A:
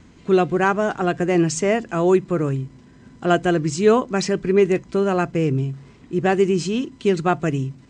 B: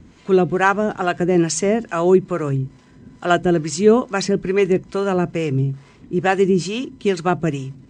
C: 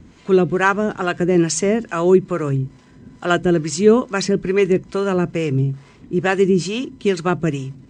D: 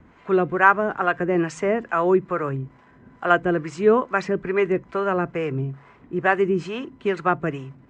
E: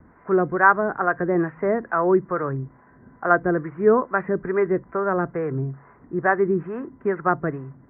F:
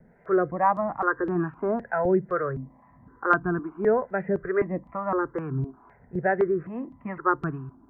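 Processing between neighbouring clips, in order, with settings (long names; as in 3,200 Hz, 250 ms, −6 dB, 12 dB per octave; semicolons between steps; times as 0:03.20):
two-band tremolo in antiphase 2.3 Hz, depth 70%, crossover 520 Hz; level +4.5 dB
dynamic equaliser 740 Hz, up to −6 dB, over −34 dBFS, Q 3.2; level +1 dB
three-way crossover with the lows and the highs turned down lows −12 dB, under 580 Hz, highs −23 dB, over 2,100 Hz; level +3.5 dB
Butterworth low-pass 1,900 Hz 48 dB per octave
step-sequenced phaser 3.9 Hz 300–2,000 Hz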